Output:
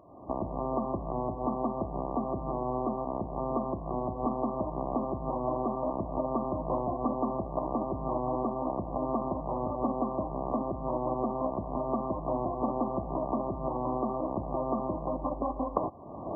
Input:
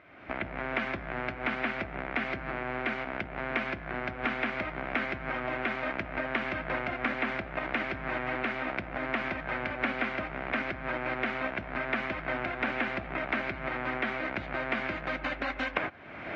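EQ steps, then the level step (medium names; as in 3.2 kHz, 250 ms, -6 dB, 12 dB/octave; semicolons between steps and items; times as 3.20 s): brick-wall FIR low-pass 1.2 kHz; +4.5 dB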